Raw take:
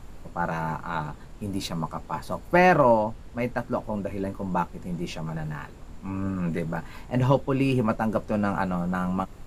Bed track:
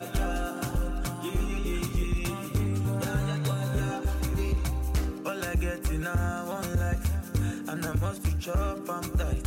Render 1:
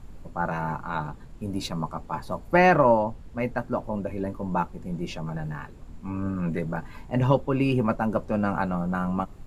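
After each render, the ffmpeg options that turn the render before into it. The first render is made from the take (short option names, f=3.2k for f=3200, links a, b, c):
-af "afftdn=nr=6:nf=-44"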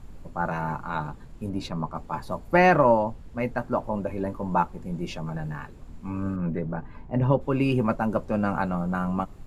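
-filter_complex "[0:a]asettb=1/sr,asplit=3[a][b][c];[a]atrim=end=1.494[d];[b]atrim=start=1.49:end=1.95,asetpts=PTS-STARTPTS,afade=t=in:d=0.004:c=qsin,afade=t=out:st=0.456:d=0.004:c=qsin,lowpass=f=2.8k:p=1[e];[c]atrim=start=1.946[f];[d][e]acrossfade=d=0.004:c1=hsin:c2=qsin[g];[g][f]acrossfade=d=0.004:c1=qsin:c2=hsin,asettb=1/sr,asplit=3[h][i][j];[h]atrim=end=3.604[k];[i]atrim=start=3.6:end=4.81,asetpts=PTS-STARTPTS,afade=t=in:d=0.004:c=qsin,afade=t=out:st=1.206:d=0.004:c=qsin,equalizer=f=950:w=1:g=4[l];[j]atrim=start=4.806[m];[k][l]acrossfade=d=0.004:c1=hsin:c2=qsin[n];[n][m]acrossfade=d=0.004:c1=qsin:c2=hsin,asplit=3[o][p][q];[o]afade=t=out:st=6.35:d=0.02[r];[p]lowpass=f=1k:p=1,afade=t=in:st=6.35:d=0.02,afade=t=out:st=7.4:d=0.02[s];[q]afade=t=in:st=7.4:d=0.02[t];[r][s][t]amix=inputs=3:normalize=0"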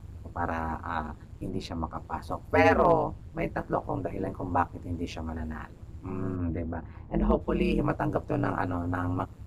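-af "asoftclip=type=hard:threshold=-8.5dB,aeval=exprs='val(0)*sin(2*PI*83*n/s)':c=same"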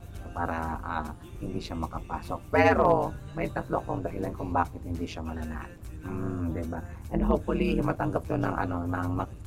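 -filter_complex "[1:a]volume=-16.5dB[a];[0:a][a]amix=inputs=2:normalize=0"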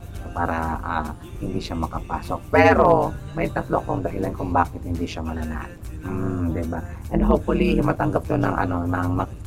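-af "volume=7dB,alimiter=limit=-3dB:level=0:latency=1"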